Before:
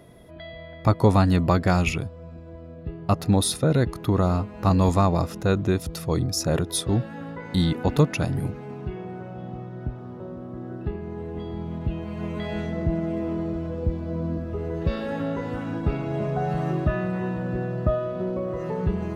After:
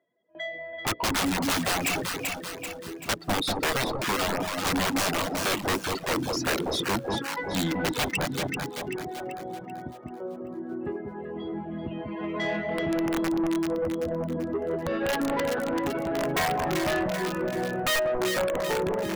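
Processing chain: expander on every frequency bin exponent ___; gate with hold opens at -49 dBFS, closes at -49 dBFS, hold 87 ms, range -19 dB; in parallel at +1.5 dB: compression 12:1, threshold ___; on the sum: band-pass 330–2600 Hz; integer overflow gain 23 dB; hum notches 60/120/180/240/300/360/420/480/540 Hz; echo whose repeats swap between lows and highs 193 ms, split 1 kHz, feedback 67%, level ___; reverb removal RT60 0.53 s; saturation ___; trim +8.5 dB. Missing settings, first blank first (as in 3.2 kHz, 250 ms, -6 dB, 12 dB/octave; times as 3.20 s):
1.5, -31 dBFS, -3 dB, -30.5 dBFS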